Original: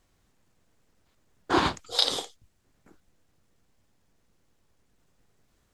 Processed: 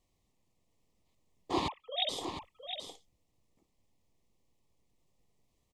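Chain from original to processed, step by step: 1.68–2.09 sine-wave speech; Butterworth band-stop 1500 Hz, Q 1.9; echo 0.709 s -8 dB; gain -8 dB

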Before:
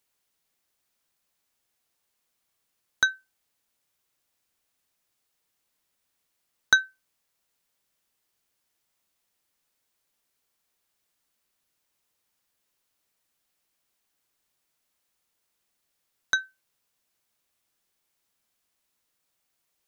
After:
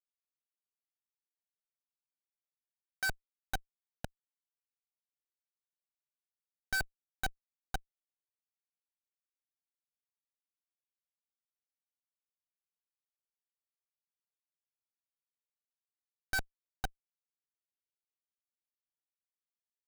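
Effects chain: low shelf 450 Hz -9 dB; feedback echo 0.508 s, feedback 50%, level -16 dB; Schmitt trigger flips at -31.5 dBFS; gain +9.5 dB

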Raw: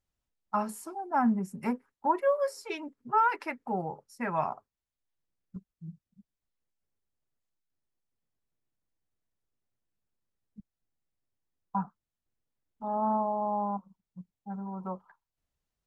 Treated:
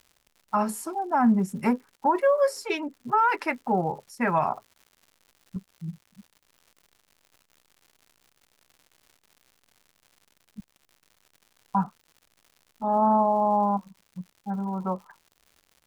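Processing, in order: limiter -21.5 dBFS, peak gain reduction 7 dB; crackle 160/s -52 dBFS; gain +8 dB

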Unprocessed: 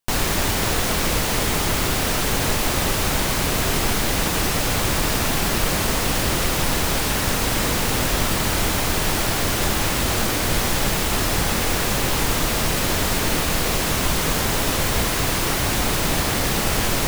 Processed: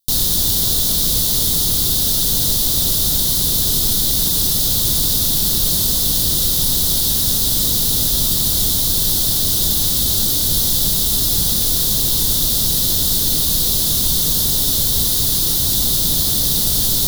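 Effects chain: EQ curve 170 Hz 0 dB, 820 Hz -12 dB, 2500 Hz -17 dB, 3600 Hz +9 dB, 7600 Hz +5 dB, 12000 Hz +12 dB

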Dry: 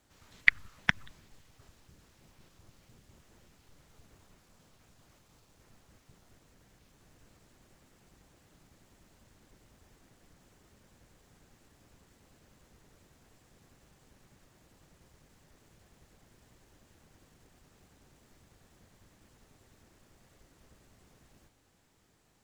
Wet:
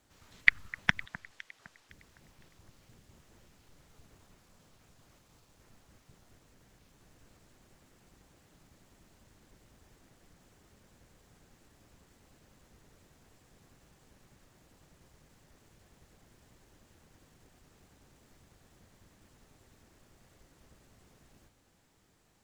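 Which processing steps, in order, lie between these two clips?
1.05–1.9 weighting filter A; echo with dull and thin repeats by turns 0.255 s, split 1700 Hz, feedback 54%, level -14 dB

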